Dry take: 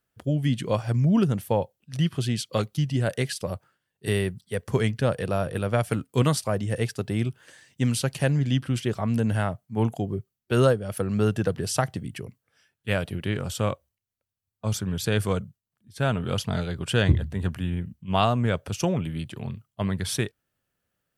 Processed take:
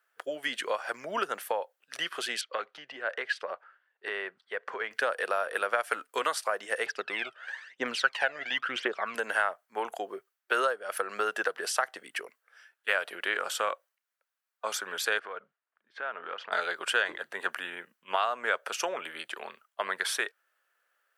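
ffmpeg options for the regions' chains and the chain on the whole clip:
-filter_complex "[0:a]asettb=1/sr,asplit=3[a][b][c];[a]atrim=end=2.414[d];[b]atrim=start=2.41:end=4.91,asetpts=PTS-STARTPTS,afade=t=in:d=0.004:c=qsin,afade=t=out:st=2.496:d=0.004:c=qsin,lowpass=2.8k,acompressor=threshold=-31dB:ratio=2.5:attack=3.2:release=140:knee=1:detection=peak[e];[c]atrim=start=4.906[f];[d][e]acrossfade=d=0.004:c1=hsin:c2=qsin[g];[g][f]acrossfade=d=0.004:c1=qsin:c2=hsin,asettb=1/sr,asplit=3[h][i][j];[h]atrim=end=6.864[k];[i]atrim=start=6.86:end=9.15,asetpts=PTS-STARTPTS,afade=t=in:d=0.004:c=qsin,afade=t=out:st=2.286:d=0.004:c=qsin,lowpass=3.8k,bandreject=f=50:t=h:w=6,bandreject=f=100:t=h:w=6,aphaser=in_gain=1:out_gain=1:delay=1.7:decay=0.7:speed=1:type=triangular[l];[j]atrim=start=9.146[m];[k][l]acrossfade=d=0.004:c1=hsin:c2=qsin[n];[n][m]acrossfade=d=0.004:c1=qsin:c2=hsin,asettb=1/sr,asplit=3[o][p][q];[o]atrim=end=15.194[r];[p]atrim=start=15.19:end=16.52,asetpts=PTS-STARTPTS,afade=t=in:d=0.004:c=qsin,afade=t=out:st=1.326:d=0.004:c=qsin,lowpass=3.1k,aemphasis=mode=reproduction:type=50fm,acompressor=threshold=-31dB:ratio=16:attack=3.2:release=140:knee=1:detection=peak[s];[q]atrim=start=16.516[t];[r][s]acrossfade=d=0.004:c1=hsin:c2=qsin[u];[u][t]acrossfade=d=0.004:c1=qsin:c2=hsin,highpass=f=460:w=0.5412,highpass=f=460:w=1.3066,acompressor=threshold=-31dB:ratio=4,equalizer=f=1.5k:w=1.1:g=12"

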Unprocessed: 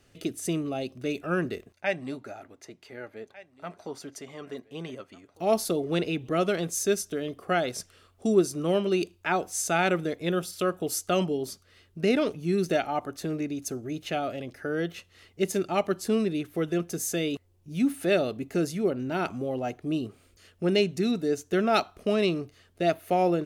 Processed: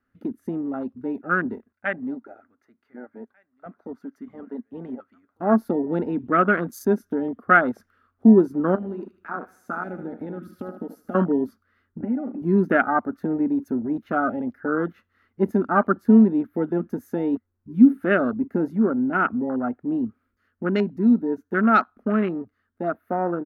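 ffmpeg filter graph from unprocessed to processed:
-filter_complex "[0:a]asettb=1/sr,asplit=3[a][b][c];[a]atrim=end=8.754[d];[b]atrim=start=8.75:end=11.15,asetpts=PTS-STARTPTS,afade=t=in:d=0.004:c=qsin,afade=t=out:st=2.396:d=0.004:c=qsin,asoftclip=type=hard:threshold=-18.5dB,acompressor=threshold=-35dB:ratio=8:attack=3.2:release=140:knee=1:detection=peak,aecho=1:1:76|152|228|304|380|456:0.355|0.188|0.0997|0.0528|0.028|0.0148,atrim=end_sample=105840[e];[c]atrim=start=11.146[f];[d][e]acrossfade=d=0.004:c1=hsin:c2=qsin[g];[g][f]acrossfade=d=0.004:c1=qsin:c2=hsin,asettb=1/sr,asplit=3[h][i][j];[h]atrim=end=12.004[k];[i]atrim=start=12:end=12.42,asetpts=PTS-STARTPTS,afade=t=in:d=0.004:c=qsin,afade=t=out:st=0.416:d=0.004:c=qsin,lowpass=f=2.6k:w=0.5412,lowpass=f=2.6k:w=1.3066,aecho=1:1:3.5:0.99,atrim=end_sample=18522,acompressor=threshold=-33dB:ratio=16:attack=3.2:release=140:knee=1:detection=peak[l];[j]atrim=start=12.416[m];[k][l]acrossfade=d=0.004:c1=hsin:c2=qsin[n];[n][m]acrossfade=d=0.004:c1=qsin:c2=hsin,afwtdn=0.0224,firequalizer=gain_entry='entry(100,0);entry(140,-10);entry(230,12);entry(340,-1);entry(660,-2);entry(1400,13);entry(2600,-8);entry(8200,-20);entry(12000,-5)':delay=0.05:min_phase=1,dynaudnorm=f=660:g=17:m=7dB"

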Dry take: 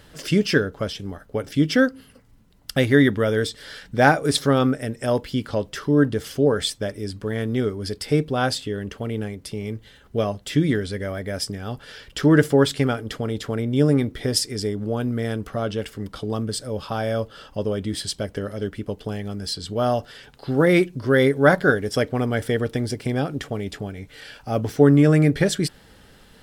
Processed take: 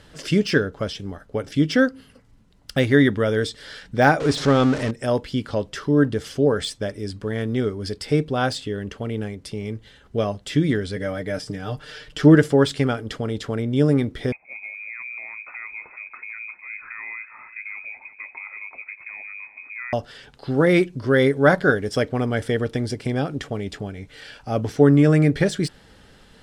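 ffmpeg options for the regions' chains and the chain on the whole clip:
-filter_complex "[0:a]asettb=1/sr,asplit=3[a][b][c];[a]atrim=end=4.204[d];[b]atrim=start=4.2:end=4.91,asetpts=PTS-STARTPTS,afade=t=in:d=0.004:c=qsin,afade=t=out:st=0.706:d=0.004:c=qsin,aeval=exprs='val(0)+0.5*0.0631*sgn(val(0))':c=same,lowpass=6.6k[e];[c]atrim=start=4.906[f];[d][e]acrossfade=d=0.004:c1=hsin:c2=qsin[g];[g][f]acrossfade=d=0.004:c1=qsin:c2=hsin,asettb=1/sr,asplit=3[h][i][j];[h]atrim=end=10.964[k];[i]atrim=start=10.96:end=12.35,asetpts=PTS-STARTPTS,afade=t=in:d=0.004:c=qsin,afade=t=out:st=1.386:d=0.004:c=qsin,deesser=0.7,aecho=1:1:6.6:0.73,atrim=end_sample=61299[l];[j]atrim=start=12.346[m];[k][l]acrossfade=d=0.004:c1=hsin:c2=qsin[n];[n][m]acrossfade=d=0.004:c1=qsin:c2=hsin,asettb=1/sr,asplit=3[o][p][q];[o]atrim=end=14.324[r];[p]atrim=start=14.32:end=19.93,asetpts=PTS-STARTPTS,afade=t=in:d=0.004:c=qsin,afade=t=out:st=5.606:d=0.004:c=qsin,acompressor=threshold=-35dB:ratio=3:attack=3.2:release=140:knee=1:detection=peak,aecho=1:1:362:0.224,atrim=end_sample=247401,lowpass=f=2.2k:t=q:w=0.5098,lowpass=f=2.2k:t=q:w=0.6013,lowpass=f=2.2k:t=q:w=0.9,lowpass=f=2.2k:t=q:w=2.563,afreqshift=-2600[s];[q]atrim=start=19.926[t];[r][s]acrossfade=d=0.004:c1=hsin:c2=qsin[u];[u][t]acrossfade=d=0.004:c1=qsin:c2=hsin,lowpass=9.1k,deesser=0.55"

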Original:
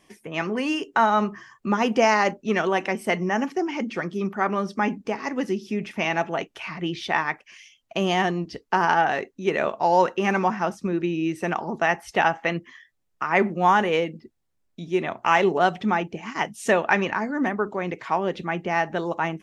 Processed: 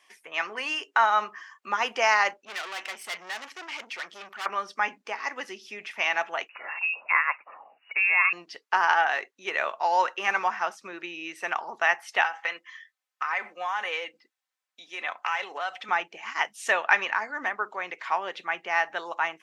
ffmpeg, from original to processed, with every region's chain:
-filter_complex "[0:a]asettb=1/sr,asplit=3[a][b][c];[a]atrim=end=2.454[d];[b]atrim=start=2.45:end=4.46,asetpts=PTS-STARTPTS,afade=t=in:d=0.004:c=qsin,afade=t=out:st=2.006:d=0.004:c=qsin,aeval=exprs='(tanh(35.5*val(0)+0.55)-tanh(0.55))/35.5':c=same,adynamicequalizer=threshold=0.00398:dfrequency=2000:dqfactor=0.7:tfrequency=2000:tqfactor=0.7:attack=5:release=100:ratio=0.375:range=2.5:mode=boostabove:tftype=highshelf[e];[c]atrim=start=4.456[f];[d][e]acrossfade=d=0.004:c1=hsin:c2=qsin[g];[g][f]acrossfade=d=0.004:c1=qsin:c2=hsin,asettb=1/sr,asplit=3[h][i][j];[h]atrim=end=6.494[k];[i]atrim=start=6.49:end=8.33,asetpts=PTS-STARTPTS,afade=t=in:d=0.004:c=qsin,afade=t=out:st=1.836:d=0.004:c=qsin,lowshelf=f=220:g=-4.5,acompressor=mode=upward:threshold=-31dB:ratio=2.5:attack=3.2:release=140:knee=2.83:detection=peak,lowpass=f=2.5k:t=q:w=0.5098,lowpass=f=2.5k:t=q:w=0.6013,lowpass=f=2.5k:t=q:w=0.9,lowpass=f=2.5k:t=q:w=2.563,afreqshift=-2900[l];[j]atrim=start=8.326[m];[k][l]acrossfade=d=0.004:c1=hsin:c2=qsin[n];[n][m]acrossfade=d=0.004:c1=qsin:c2=hsin,asettb=1/sr,asplit=3[o][p][q];[o]atrim=end=12.244[r];[p]atrim=start=12.24:end=15.89,asetpts=PTS-STARTPTS,afade=t=in:d=0.004:c=qsin,afade=t=out:st=3.646:d=0.004:c=qsin,highpass=f=510:p=1,acompressor=threshold=-23dB:ratio=6:attack=3.2:release=140:knee=1:detection=peak,aecho=1:1:3.9:0.46,atrim=end_sample=160965[s];[q]atrim=start=15.886[t];[r][s]acrossfade=d=0.004:c1=hsin:c2=qsin[u];[u][t]acrossfade=d=0.004:c1=qsin:c2=hsin,highpass=1.1k,highshelf=f=5.2k:g=-8,volume=3dB"

